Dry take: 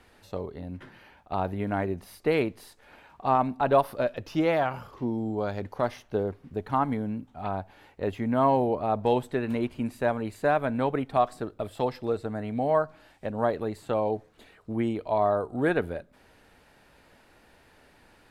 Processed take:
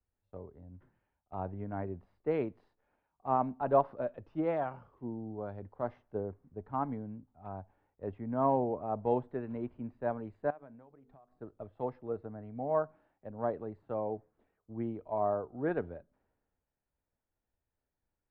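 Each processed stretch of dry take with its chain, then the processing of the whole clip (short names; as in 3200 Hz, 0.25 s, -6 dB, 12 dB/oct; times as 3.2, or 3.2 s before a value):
10.5–11.37 notches 50/100/150/200/250/300/350/400/450 Hz + compressor 20:1, threshold -36 dBFS
whole clip: LPF 1200 Hz 12 dB/oct; three-band expander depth 70%; gain -8.5 dB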